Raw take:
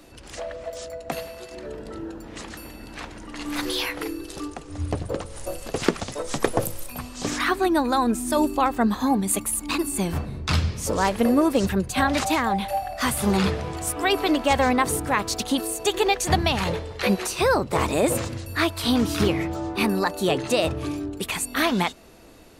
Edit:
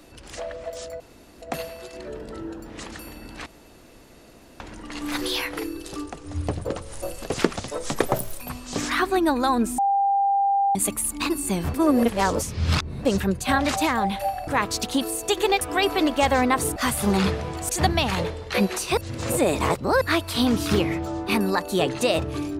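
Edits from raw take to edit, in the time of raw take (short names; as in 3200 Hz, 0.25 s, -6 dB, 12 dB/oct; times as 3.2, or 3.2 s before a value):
1 insert room tone 0.42 s
3.04 insert room tone 1.14 s
6.49–6.82 speed 117%
8.27–9.24 bleep 795 Hz -17.5 dBFS
10.23–11.54 reverse
12.96–13.89 swap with 15.04–16.18
17.46–18.5 reverse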